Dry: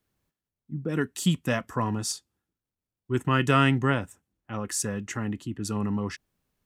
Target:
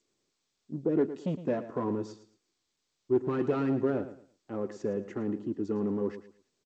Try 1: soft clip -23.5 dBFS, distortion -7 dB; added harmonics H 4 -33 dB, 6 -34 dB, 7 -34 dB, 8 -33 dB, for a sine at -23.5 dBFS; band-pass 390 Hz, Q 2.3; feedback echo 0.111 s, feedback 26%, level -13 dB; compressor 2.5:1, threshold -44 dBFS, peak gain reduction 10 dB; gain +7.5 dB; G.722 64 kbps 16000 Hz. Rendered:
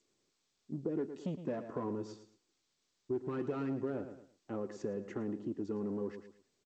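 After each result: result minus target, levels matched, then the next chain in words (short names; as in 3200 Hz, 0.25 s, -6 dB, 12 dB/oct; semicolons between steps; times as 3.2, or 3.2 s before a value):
compressor: peak gain reduction +10 dB; soft clip: distortion +10 dB
soft clip -23.5 dBFS, distortion -7 dB; added harmonics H 4 -33 dB, 6 -34 dB, 7 -34 dB, 8 -33 dB, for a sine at -23.5 dBFS; band-pass 390 Hz, Q 2.3; feedback echo 0.111 s, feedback 26%, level -13 dB; gain +7.5 dB; G.722 64 kbps 16000 Hz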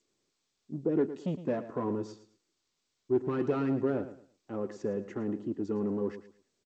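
soft clip: distortion +10 dB
soft clip -12.5 dBFS, distortion -17 dB; added harmonics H 4 -33 dB, 6 -34 dB, 7 -34 dB, 8 -33 dB, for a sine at -23.5 dBFS; band-pass 390 Hz, Q 2.3; feedback echo 0.111 s, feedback 26%, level -13 dB; gain +7.5 dB; G.722 64 kbps 16000 Hz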